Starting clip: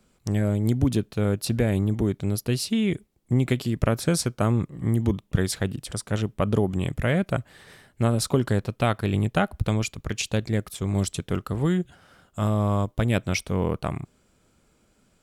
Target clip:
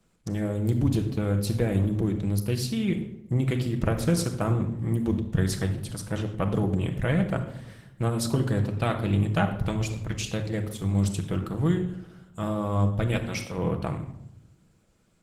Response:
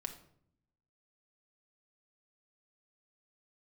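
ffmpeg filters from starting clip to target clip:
-filter_complex "[0:a]asettb=1/sr,asplit=3[link_01][link_02][link_03];[link_01]atrim=end=13.154[link_04];[link_02]atrim=start=13.15:end=13.58,asetpts=PTS-STARTPTS,afade=type=in:duration=0.004:curve=qsin,afade=type=out:start_time=0.426:duration=0.004:curve=qsin,highpass=frequency=420:poles=1[link_05];[link_03]atrim=start=13.576[link_06];[link_04][link_05]acrossfade=duration=0.004:curve1=hsin:curve2=qsin[link_07];[link_07][link_06]acrossfade=duration=0.004:curve1=qsin:curve2=hsin[link_08];[1:a]atrim=start_sample=2205,asetrate=33075,aresample=44100[link_09];[link_08][link_09]afir=irnorm=-1:irlink=0,volume=-2dB" -ar 48000 -c:a libopus -b:a 16k

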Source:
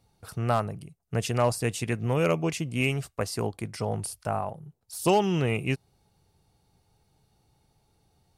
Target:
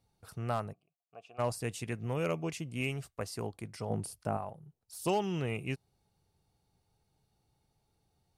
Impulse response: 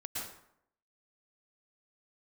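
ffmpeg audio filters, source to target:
-filter_complex "[0:a]asplit=3[link_01][link_02][link_03];[link_01]afade=type=out:start_time=0.72:duration=0.02[link_04];[link_02]asplit=3[link_05][link_06][link_07];[link_05]bandpass=frequency=730:width_type=q:width=8,volume=0dB[link_08];[link_06]bandpass=frequency=1090:width_type=q:width=8,volume=-6dB[link_09];[link_07]bandpass=frequency=2440:width_type=q:width=8,volume=-9dB[link_10];[link_08][link_09][link_10]amix=inputs=3:normalize=0,afade=type=in:start_time=0.72:duration=0.02,afade=type=out:start_time=1.38:duration=0.02[link_11];[link_03]afade=type=in:start_time=1.38:duration=0.02[link_12];[link_04][link_11][link_12]amix=inputs=3:normalize=0,asettb=1/sr,asplit=3[link_13][link_14][link_15];[link_13]atrim=end=3.904[link_16];[link_14]atrim=start=3.9:end=4.37,asetpts=PTS-STARTPTS,afade=type=in:duration=0.004:curve=qsin,afade=type=out:start_time=0.466:duration=0.004:curve=qsin,equalizer=frequency=250:width=0.56:gain=9[link_17];[link_15]atrim=start=4.366[link_18];[link_16][link_17]acrossfade=duration=0.004:curve1=hsin:curve2=qsin[link_19];[link_19][link_18]acrossfade=duration=0.004:curve1=qsin:curve2=hsin,volume=-8.5dB"

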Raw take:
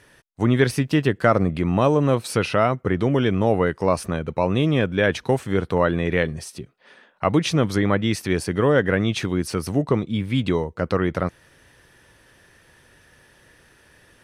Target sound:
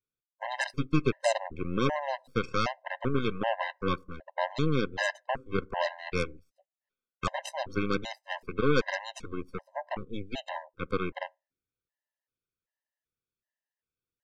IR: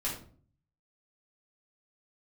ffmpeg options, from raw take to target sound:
-filter_complex "[0:a]lowpass=frequency=7800:width=0.5412,lowpass=frequency=7800:width=1.3066,aeval=exprs='0.631*(cos(1*acos(clip(val(0)/0.631,-1,1)))-cos(1*PI/2))+0.0891*(cos(5*acos(clip(val(0)/0.631,-1,1)))-cos(5*PI/2))+0.141*(cos(7*acos(clip(val(0)/0.631,-1,1)))-cos(7*PI/2))+0.1*(cos(8*acos(clip(val(0)/0.631,-1,1)))-cos(8*PI/2))':channel_layout=same,asplit=2[link_01][link_02];[link_02]lowshelf=frequency=160:gain=-8[link_03];[1:a]atrim=start_sample=2205[link_04];[link_03][link_04]afir=irnorm=-1:irlink=0,volume=-26dB[link_05];[link_01][link_05]amix=inputs=2:normalize=0,afftdn=noise_reduction=17:noise_floor=-38,afftfilt=real='re*gt(sin(2*PI*1.3*pts/sr)*(1-2*mod(floor(b*sr/1024/530),2)),0)':imag='im*gt(sin(2*PI*1.3*pts/sr)*(1-2*mod(floor(b*sr/1024/530),2)),0)':win_size=1024:overlap=0.75,volume=-7dB"

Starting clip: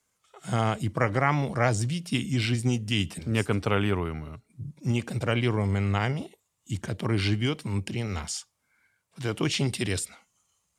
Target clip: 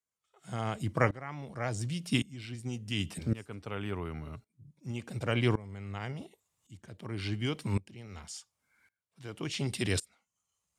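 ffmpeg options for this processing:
ffmpeg -i in.wav -af "aeval=exprs='val(0)*pow(10,-21*if(lt(mod(-0.9*n/s,1),2*abs(-0.9)/1000),1-mod(-0.9*n/s,1)/(2*abs(-0.9)/1000),(mod(-0.9*n/s,1)-2*abs(-0.9)/1000)/(1-2*abs(-0.9)/1000))/20)':channel_layout=same" out.wav

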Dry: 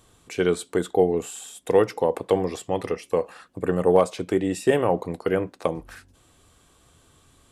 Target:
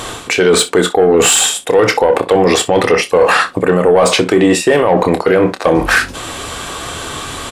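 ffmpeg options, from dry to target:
ffmpeg -i in.wav -filter_complex "[0:a]areverse,acompressor=threshold=-34dB:ratio=12,areverse,asplit=2[link_01][link_02];[link_02]highpass=frequency=720:poles=1,volume=12dB,asoftclip=type=tanh:threshold=-26dB[link_03];[link_01][link_03]amix=inputs=2:normalize=0,lowpass=frequency=3500:poles=1,volume=-6dB,aecho=1:1:27|61:0.299|0.126,alimiter=level_in=32dB:limit=-1dB:release=50:level=0:latency=1,volume=-1dB" out.wav

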